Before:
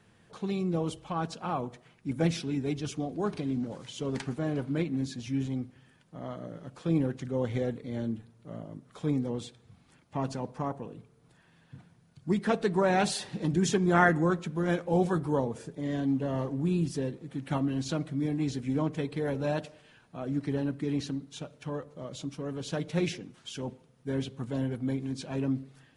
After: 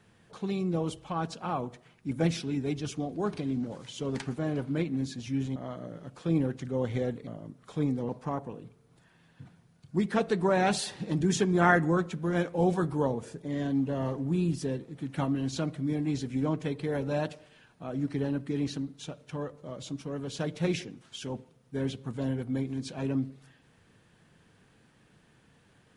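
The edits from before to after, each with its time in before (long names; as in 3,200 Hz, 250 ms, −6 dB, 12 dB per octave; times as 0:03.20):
0:05.56–0:06.16: remove
0:07.87–0:08.54: remove
0:09.36–0:10.42: remove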